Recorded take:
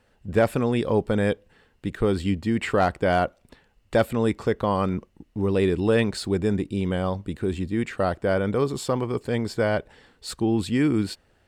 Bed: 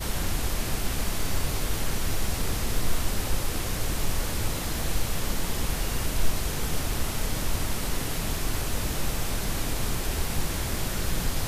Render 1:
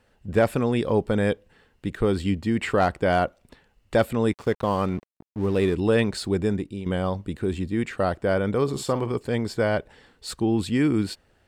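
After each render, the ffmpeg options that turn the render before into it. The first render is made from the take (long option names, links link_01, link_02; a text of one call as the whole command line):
ffmpeg -i in.wav -filter_complex "[0:a]asettb=1/sr,asplit=3[link_01][link_02][link_03];[link_01]atrim=end=4.334[link_04];[link_02]atrim=start=4.33:end=5.75,asetpts=PTS-STARTPTS,afade=type=in:duration=0.004:curve=qsin,afade=type=out:start_time=1.416:duration=0.004:curve=qsin,aeval=exprs='sgn(val(0))*max(abs(val(0))-0.00794,0)':channel_layout=same[link_05];[link_03]atrim=start=5.746[link_06];[link_04][link_05]acrossfade=duration=0.004:curve1=hsin:curve2=qsin[link_07];[link_07][link_06]acrossfade=duration=0.004:curve1=qsin:curve2=hsin,asettb=1/sr,asplit=3[link_08][link_09][link_10];[link_08]atrim=end=8.634[link_11];[link_09]atrim=start=8.63:end=9.12,asetpts=PTS-STARTPTS,afade=type=in:duration=0.004:curve=qsin,afade=type=out:start_time=0.486:duration=0.004:curve=qsin,asplit=2[link_12][link_13];[link_13]adelay=50,volume=-12dB[link_14];[link_12][link_14]amix=inputs=2:normalize=0,atrim=end_sample=21609[link_15];[link_10]atrim=start=9.116[link_16];[link_11][link_15]acrossfade=duration=0.004:curve1=hsin:curve2=qsin[link_17];[link_17][link_16]acrossfade=duration=0.004:curve1=qsin:curve2=hsin,asplit=2[link_18][link_19];[link_18]atrim=end=6.86,asetpts=PTS-STARTPTS,afade=type=out:start_time=6.44:duration=0.42:silence=0.316228[link_20];[link_19]atrim=start=6.86,asetpts=PTS-STARTPTS,afade=type=in:duration=0.004:curve=hsin:silence=0.316228[link_21];[link_20][link_21]concat=n=2:v=0:a=1" out.wav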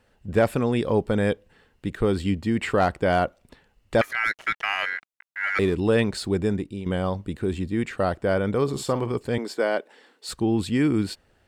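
ffmpeg -i in.wav -filter_complex "[0:a]asettb=1/sr,asplit=3[link_01][link_02][link_03];[link_01]atrim=end=4.014[link_04];[link_02]atrim=start=4.01:end=5.59,asetpts=PTS-STARTPTS,afade=type=in:duration=0.004:curve=qsin,afade=type=out:start_time=1.576:duration=0.004:curve=qsin,aeval=exprs='val(0)*sin(2*PI*1800*n/s)':channel_layout=same[link_05];[link_03]atrim=start=5.586[link_06];[link_04][link_05]acrossfade=duration=0.004:curve1=hsin:curve2=qsin[link_07];[link_07][link_06]acrossfade=duration=0.004:curve1=qsin:curve2=hsin,asettb=1/sr,asplit=3[link_08][link_09][link_10];[link_08]atrim=end=9.384[link_11];[link_09]atrim=start=9.38:end=10.29,asetpts=PTS-STARTPTS,afade=type=in:duration=0.004:curve=qsin,afade=type=out:start_time=0.906:duration=0.004:curve=qsin,highpass=frequency=260:width=0.5412,highpass=frequency=260:width=1.3066[link_12];[link_10]atrim=start=10.286[link_13];[link_11][link_12]acrossfade=duration=0.004:curve1=hsin:curve2=qsin[link_14];[link_14][link_13]acrossfade=duration=0.004:curve1=qsin:curve2=hsin" out.wav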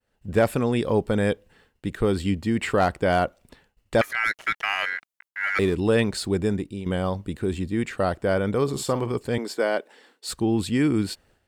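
ffmpeg -i in.wav -af "agate=range=-33dB:threshold=-55dB:ratio=3:detection=peak,highshelf=frequency=6700:gain=5.5" out.wav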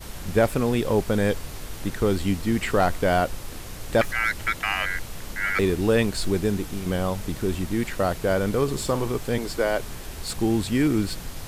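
ffmpeg -i in.wav -i bed.wav -filter_complex "[1:a]volume=-8dB[link_01];[0:a][link_01]amix=inputs=2:normalize=0" out.wav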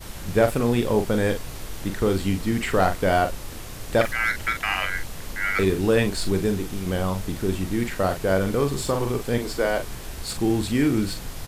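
ffmpeg -i in.wav -filter_complex "[0:a]asplit=2[link_01][link_02];[link_02]adelay=42,volume=-7.5dB[link_03];[link_01][link_03]amix=inputs=2:normalize=0" out.wav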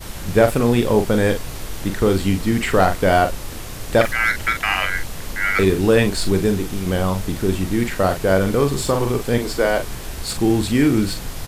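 ffmpeg -i in.wav -af "volume=5dB,alimiter=limit=-3dB:level=0:latency=1" out.wav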